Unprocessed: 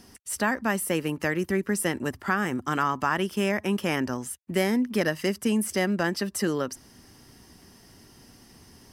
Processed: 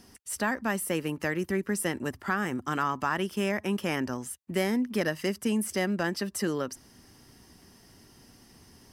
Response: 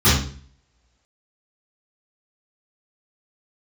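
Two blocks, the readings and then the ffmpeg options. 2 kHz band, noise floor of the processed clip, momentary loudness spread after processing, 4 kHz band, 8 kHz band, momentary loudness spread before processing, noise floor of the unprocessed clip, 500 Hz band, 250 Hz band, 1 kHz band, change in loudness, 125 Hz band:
−3.0 dB, −57 dBFS, 5 LU, −3.0 dB, −3.0 dB, 5 LU, −54 dBFS, −3.0 dB, −3.0 dB, −3.0 dB, −3.0 dB, −3.0 dB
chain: -af "acontrast=40,volume=-8.5dB"

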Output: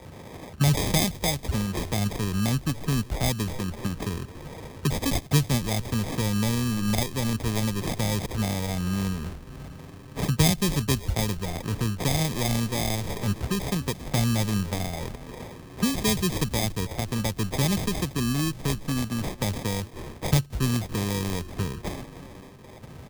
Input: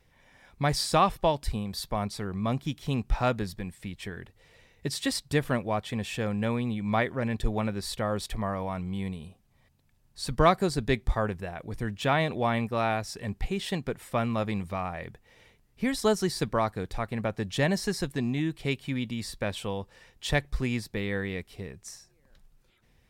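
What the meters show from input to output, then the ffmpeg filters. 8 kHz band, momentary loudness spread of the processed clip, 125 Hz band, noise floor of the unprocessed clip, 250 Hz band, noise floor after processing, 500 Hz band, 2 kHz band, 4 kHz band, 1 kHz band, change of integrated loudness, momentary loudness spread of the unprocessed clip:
+9.0 dB, 15 LU, +7.0 dB, −65 dBFS, +4.0 dB, −44 dBFS, −3.0 dB, −0.5 dB, +5.0 dB, −4.0 dB, +3.0 dB, 12 LU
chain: -filter_complex "[0:a]asplit=2[link_01][link_02];[link_02]acompressor=mode=upward:threshold=-28dB:ratio=2.5,volume=-2dB[link_03];[link_01][link_03]amix=inputs=2:normalize=0,highpass=frequency=71:width=0.5412,highpass=frequency=71:width=1.3066,equalizer=frequency=1300:width_type=o:width=2.3:gain=-9.5,asplit=2[link_04][link_05];[link_05]asplit=6[link_06][link_07][link_08][link_09][link_10][link_11];[link_06]adelay=282,afreqshift=-120,volume=-18dB[link_12];[link_07]adelay=564,afreqshift=-240,volume=-22.3dB[link_13];[link_08]adelay=846,afreqshift=-360,volume=-26.6dB[link_14];[link_09]adelay=1128,afreqshift=-480,volume=-30.9dB[link_15];[link_10]adelay=1410,afreqshift=-600,volume=-35.2dB[link_16];[link_11]adelay=1692,afreqshift=-720,volume=-39.5dB[link_17];[link_12][link_13][link_14][link_15][link_16][link_17]amix=inputs=6:normalize=0[link_18];[link_04][link_18]amix=inputs=2:normalize=0,adynamicequalizer=threshold=0.00891:dfrequency=130:dqfactor=0.87:tfrequency=130:tqfactor=0.87:attack=5:release=100:ratio=0.375:range=3:mode=cutabove:tftype=bell,acrusher=samples=31:mix=1:aa=0.000001,acrossover=split=180|3000[link_19][link_20][link_21];[link_20]acompressor=threshold=-39dB:ratio=3[link_22];[link_19][link_22][link_21]amix=inputs=3:normalize=0,volume=7dB"

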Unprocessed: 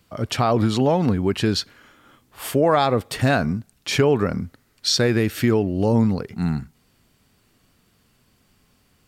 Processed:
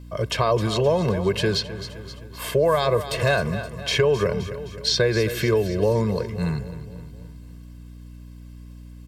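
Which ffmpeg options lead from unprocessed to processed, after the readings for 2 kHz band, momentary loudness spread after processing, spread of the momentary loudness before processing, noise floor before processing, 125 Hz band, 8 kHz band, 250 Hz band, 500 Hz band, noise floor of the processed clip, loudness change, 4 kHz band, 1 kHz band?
+0.5 dB, 17 LU, 9 LU, −63 dBFS, −2.0 dB, −2.5 dB, −6.5 dB, +1.0 dB, −41 dBFS, −1.5 dB, 0.0 dB, −3.5 dB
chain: -filter_complex "[0:a]bandreject=frequency=1400:width=12,aecho=1:1:1.9:0.95,aecho=1:1:260|520|780|1040|1300:0.178|0.0942|0.05|0.0265|0.014,acrossover=split=150|4700[link_01][link_02][link_03];[link_01]acompressor=threshold=-31dB:ratio=4[link_04];[link_02]acompressor=threshold=-16dB:ratio=4[link_05];[link_03]acompressor=threshold=-36dB:ratio=4[link_06];[link_04][link_05][link_06]amix=inputs=3:normalize=0,aeval=exprs='val(0)+0.0112*(sin(2*PI*60*n/s)+sin(2*PI*2*60*n/s)/2+sin(2*PI*3*60*n/s)/3+sin(2*PI*4*60*n/s)/4+sin(2*PI*5*60*n/s)/5)':channel_layout=same" -ar 44100 -c:a libmp3lame -b:a 80k

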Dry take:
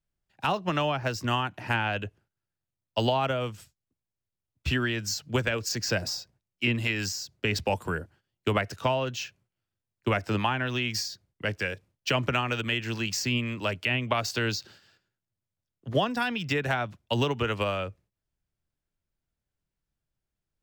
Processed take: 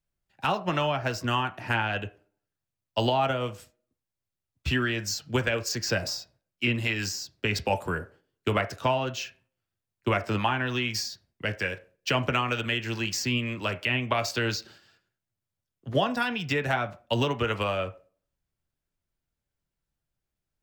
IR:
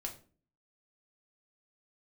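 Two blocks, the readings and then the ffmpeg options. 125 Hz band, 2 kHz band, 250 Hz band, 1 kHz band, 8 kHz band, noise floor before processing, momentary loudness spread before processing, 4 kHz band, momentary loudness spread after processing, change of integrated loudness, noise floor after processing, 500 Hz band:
0.0 dB, +1.0 dB, 0.0 dB, +1.5 dB, 0.0 dB, below −85 dBFS, 8 LU, +0.5 dB, 8 LU, +0.5 dB, below −85 dBFS, +0.5 dB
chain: -filter_complex "[0:a]asplit=2[link_01][link_02];[link_02]highpass=480[link_03];[1:a]atrim=start_sample=2205,lowpass=2400,adelay=9[link_04];[link_03][link_04]afir=irnorm=-1:irlink=0,volume=-4dB[link_05];[link_01][link_05]amix=inputs=2:normalize=0"

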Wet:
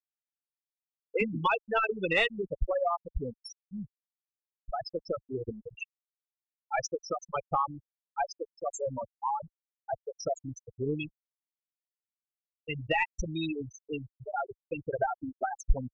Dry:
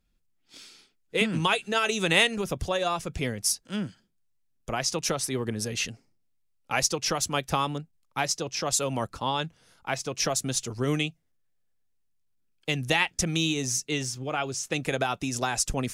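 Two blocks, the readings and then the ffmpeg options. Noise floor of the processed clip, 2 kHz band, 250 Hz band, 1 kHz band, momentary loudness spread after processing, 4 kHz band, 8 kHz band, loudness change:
below −85 dBFS, −5.5 dB, −7.5 dB, −2.0 dB, 14 LU, −13.5 dB, −18.5 dB, −6.0 dB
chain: -filter_complex "[0:a]afftfilt=real='re*gte(hypot(re,im),0.2)':imag='im*gte(hypot(re,im),0.2)':win_size=1024:overlap=0.75,asplit=2[link_01][link_02];[link_02]highpass=frequency=720:poles=1,volume=9dB,asoftclip=type=tanh:threshold=-8.5dB[link_03];[link_01][link_03]amix=inputs=2:normalize=0,lowpass=frequency=1200:poles=1,volume=-6dB,asubboost=boost=10.5:cutoff=53"

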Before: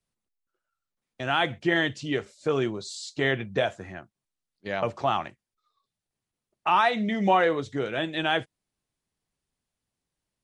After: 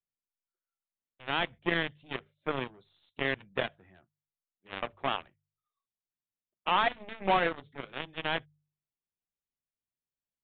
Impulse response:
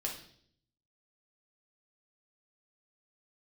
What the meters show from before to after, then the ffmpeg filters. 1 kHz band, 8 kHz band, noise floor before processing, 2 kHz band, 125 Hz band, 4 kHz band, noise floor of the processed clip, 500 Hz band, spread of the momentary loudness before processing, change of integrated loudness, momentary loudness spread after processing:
−6.0 dB, below −30 dB, below −85 dBFS, −5.0 dB, −9.0 dB, −4.0 dB, below −85 dBFS, −8.5 dB, 13 LU, −6.0 dB, 14 LU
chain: -af "aeval=exprs='0.355*(cos(1*acos(clip(val(0)/0.355,-1,1)))-cos(1*PI/2))+0.0355*(cos(5*acos(clip(val(0)/0.355,-1,1)))-cos(5*PI/2))+0.00708*(cos(6*acos(clip(val(0)/0.355,-1,1)))-cos(6*PI/2))+0.0891*(cos(7*acos(clip(val(0)/0.355,-1,1)))-cos(7*PI/2))':channel_layout=same,bandreject=frequency=49.84:width_type=h:width=4,bandreject=frequency=99.68:width_type=h:width=4,bandreject=frequency=149.52:width_type=h:width=4,aresample=8000,aresample=44100,volume=-5.5dB"

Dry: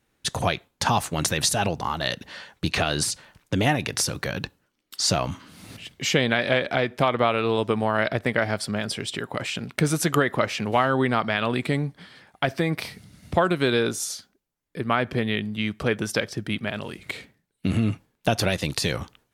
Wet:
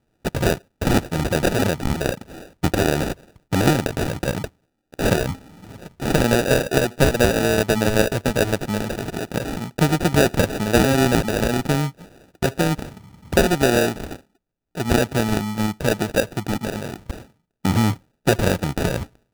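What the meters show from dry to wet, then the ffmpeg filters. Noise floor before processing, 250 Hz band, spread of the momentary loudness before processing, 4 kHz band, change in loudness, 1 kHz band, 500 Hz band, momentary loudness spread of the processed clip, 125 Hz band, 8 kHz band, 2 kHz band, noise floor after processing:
−74 dBFS, +6.0 dB, 12 LU, −0.5 dB, +3.5 dB, +0.5 dB, +5.0 dB, 13 LU, +5.5 dB, 0.0 dB, +1.5 dB, −72 dBFS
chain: -af "adynamicsmooth=sensitivity=8:basefreq=1900,acrusher=samples=41:mix=1:aa=0.000001,volume=4.5dB"

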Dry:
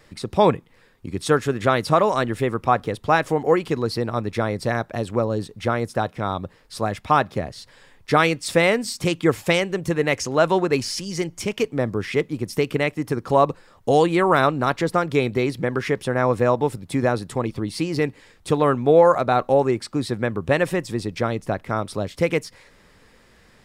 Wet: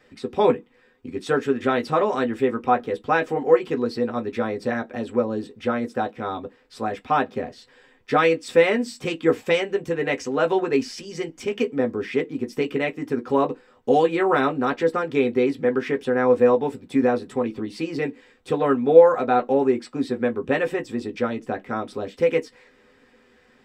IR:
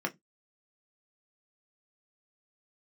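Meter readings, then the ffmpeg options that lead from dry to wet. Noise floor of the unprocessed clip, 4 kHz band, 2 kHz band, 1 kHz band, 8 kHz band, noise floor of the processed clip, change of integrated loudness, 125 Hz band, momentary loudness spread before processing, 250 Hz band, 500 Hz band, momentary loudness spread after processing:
−54 dBFS, −5.5 dB, −2.5 dB, −2.5 dB, can't be measured, −58 dBFS, −1.0 dB, −10.0 dB, 9 LU, −0.5 dB, +0.5 dB, 11 LU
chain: -filter_complex "[1:a]atrim=start_sample=2205,asetrate=61740,aresample=44100[link_01];[0:a][link_01]afir=irnorm=-1:irlink=0,volume=-6dB"

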